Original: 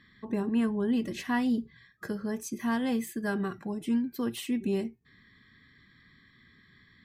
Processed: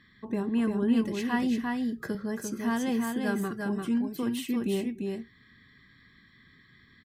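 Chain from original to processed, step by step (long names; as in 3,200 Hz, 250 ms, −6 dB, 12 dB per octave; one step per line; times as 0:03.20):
on a send: single-tap delay 345 ms −4 dB
0:01.42–0:02.15: on the sum: multiband upward and downward compressor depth 40%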